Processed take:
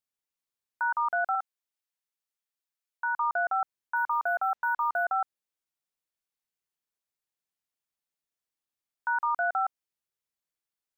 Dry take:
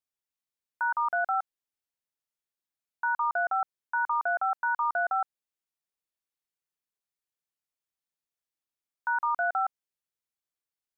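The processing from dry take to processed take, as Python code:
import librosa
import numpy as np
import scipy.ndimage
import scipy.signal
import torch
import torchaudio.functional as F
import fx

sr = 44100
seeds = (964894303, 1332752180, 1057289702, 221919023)

y = fx.highpass(x, sr, hz=770.0, slope=6, at=(1.35, 3.16))
y = fx.resample_linear(y, sr, factor=3, at=(3.96, 5.05))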